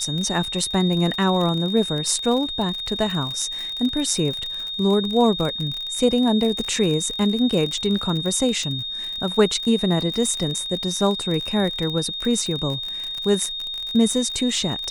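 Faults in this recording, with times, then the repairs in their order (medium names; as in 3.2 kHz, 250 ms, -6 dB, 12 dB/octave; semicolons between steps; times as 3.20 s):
crackle 48 per s -25 dBFS
whine 3.7 kHz -27 dBFS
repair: de-click; band-stop 3.7 kHz, Q 30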